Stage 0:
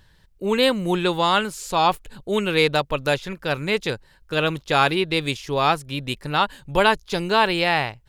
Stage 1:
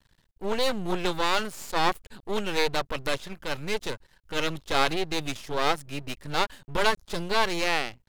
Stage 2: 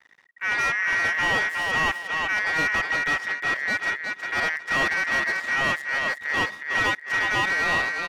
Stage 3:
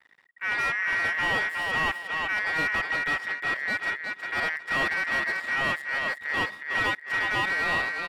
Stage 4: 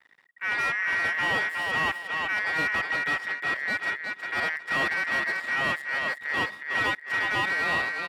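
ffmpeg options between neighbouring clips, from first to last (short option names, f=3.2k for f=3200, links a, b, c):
-af "aeval=exprs='max(val(0),0)':c=same,volume=-1.5dB"
-filter_complex "[0:a]aecho=1:1:363|726|1089:0.398|0.0836|0.0176,aeval=exprs='val(0)*sin(2*PI*1900*n/s)':c=same,asplit=2[a][b];[b]highpass=f=720:p=1,volume=23dB,asoftclip=type=tanh:threshold=-5.5dB[c];[a][c]amix=inputs=2:normalize=0,lowpass=f=1.1k:p=1,volume=-6dB,volume=-1.5dB"
-af "equalizer=f=6.2k:w=4.8:g=-9.5,volume=-3dB"
-af "highpass=69"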